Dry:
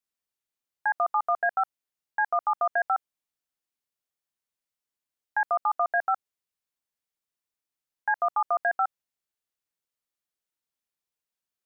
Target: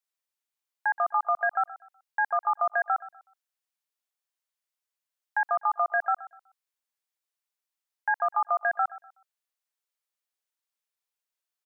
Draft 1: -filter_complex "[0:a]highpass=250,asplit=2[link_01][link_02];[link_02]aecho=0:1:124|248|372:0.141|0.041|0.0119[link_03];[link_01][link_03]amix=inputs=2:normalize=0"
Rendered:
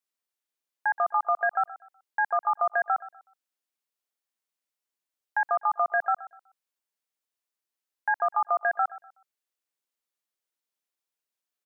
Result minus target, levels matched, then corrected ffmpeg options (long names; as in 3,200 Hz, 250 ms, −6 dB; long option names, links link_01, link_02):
250 Hz band +7.5 dB
-filter_complex "[0:a]highpass=560,asplit=2[link_01][link_02];[link_02]aecho=0:1:124|248|372:0.141|0.041|0.0119[link_03];[link_01][link_03]amix=inputs=2:normalize=0"